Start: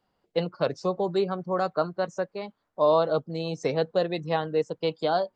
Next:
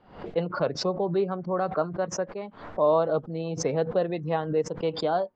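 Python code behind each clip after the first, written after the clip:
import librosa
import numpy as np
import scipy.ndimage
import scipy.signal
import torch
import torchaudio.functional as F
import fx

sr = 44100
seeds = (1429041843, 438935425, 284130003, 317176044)

y = scipy.signal.sosfilt(scipy.signal.cheby1(2, 1.0, 3100.0, 'lowpass', fs=sr, output='sos'), x)
y = fx.high_shelf(y, sr, hz=2100.0, db=-10.0)
y = fx.pre_swell(y, sr, db_per_s=110.0)
y = F.gain(torch.from_numpy(y), 1.0).numpy()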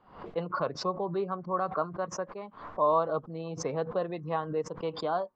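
y = fx.peak_eq(x, sr, hz=1100.0, db=11.0, octaves=0.51)
y = F.gain(torch.from_numpy(y), -6.5).numpy()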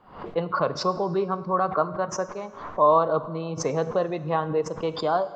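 y = fx.rev_plate(x, sr, seeds[0], rt60_s=1.6, hf_ratio=0.8, predelay_ms=0, drr_db=13.0)
y = F.gain(torch.from_numpy(y), 6.5).numpy()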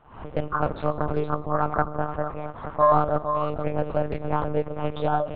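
y = x + 10.0 ** (-8.5 / 20.0) * np.pad(x, (int(462 * sr / 1000.0), 0))[:len(x)]
y = fx.lpc_monotone(y, sr, seeds[1], pitch_hz=150.0, order=8)
y = fx.doppler_dist(y, sr, depth_ms=0.28)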